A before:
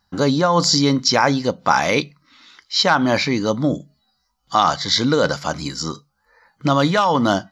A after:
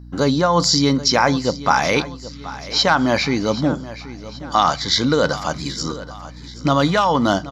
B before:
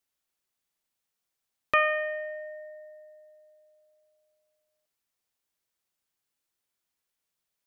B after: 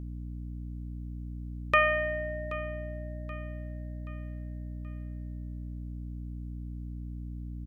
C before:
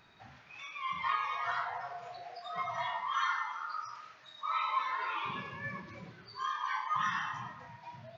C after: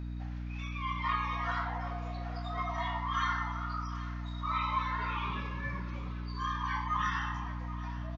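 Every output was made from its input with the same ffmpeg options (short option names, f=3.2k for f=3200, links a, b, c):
-af "aecho=1:1:778|1556|2334|3112:0.158|0.0713|0.0321|0.0144,aeval=exprs='val(0)+0.0141*(sin(2*PI*60*n/s)+sin(2*PI*2*60*n/s)/2+sin(2*PI*3*60*n/s)/3+sin(2*PI*4*60*n/s)/4+sin(2*PI*5*60*n/s)/5)':c=same"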